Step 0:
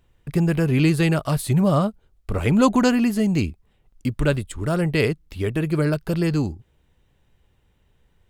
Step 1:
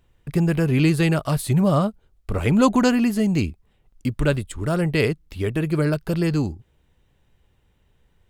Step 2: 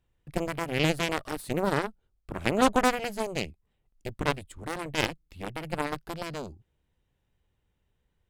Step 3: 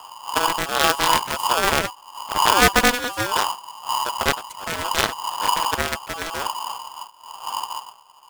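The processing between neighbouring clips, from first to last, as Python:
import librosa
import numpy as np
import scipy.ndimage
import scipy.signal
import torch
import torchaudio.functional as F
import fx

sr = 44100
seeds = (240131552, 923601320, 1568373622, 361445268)

y1 = x
y2 = fx.wow_flutter(y1, sr, seeds[0], rate_hz=2.1, depth_cents=24.0)
y2 = fx.cheby_harmonics(y2, sr, harmonics=(4, 7), levels_db=(-12, -13), full_scale_db=-3.5)
y2 = y2 * librosa.db_to_amplitude(-7.0)
y3 = fx.dmg_wind(y2, sr, seeds[1], corner_hz=100.0, level_db=-34.0)
y3 = y3 * np.sign(np.sin(2.0 * np.pi * 980.0 * np.arange(len(y3)) / sr))
y3 = y3 * librosa.db_to_amplitude(6.5)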